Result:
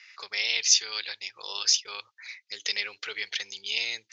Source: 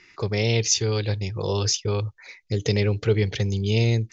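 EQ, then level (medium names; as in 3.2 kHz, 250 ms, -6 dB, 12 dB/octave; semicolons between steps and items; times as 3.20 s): Butterworth band-pass 2.8 kHz, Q 0.65; treble shelf 3.8 kHz +7 dB; 0.0 dB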